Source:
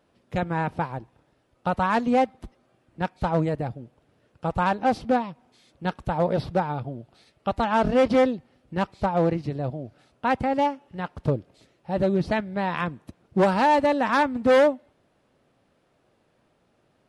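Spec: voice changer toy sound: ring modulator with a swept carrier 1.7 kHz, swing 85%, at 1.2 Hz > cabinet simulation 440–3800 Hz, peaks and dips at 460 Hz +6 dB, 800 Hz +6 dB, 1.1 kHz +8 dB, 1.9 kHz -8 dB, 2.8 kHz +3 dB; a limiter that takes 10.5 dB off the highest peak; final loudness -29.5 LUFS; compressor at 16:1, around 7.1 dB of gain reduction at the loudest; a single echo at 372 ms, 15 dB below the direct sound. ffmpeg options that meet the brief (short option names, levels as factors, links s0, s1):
-af "acompressor=threshold=0.0794:ratio=16,alimiter=limit=0.0631:level=0:latency=1,aecho=1:1:372:0.178,aeval=exprs='val(0)*sin(2*PI*1700*n/s+1700*0.85/1.2*sin(2*PI*1.2*n/s))':c=same,highpass=440,equalizer=f=460:t=q:w=4:g=6,equalizer=f=800:t=q:w=4:g=6,equalizer=f=1100:t=q:w=4:g=8,equalizer=f=1900:t=q:w=4:g=-8,equalizer=f=2800:t=q:w=4:g=3,lowpass=f=3800:w=0.5412,lowpass=f=3800:w=1.3066,volume=1.68"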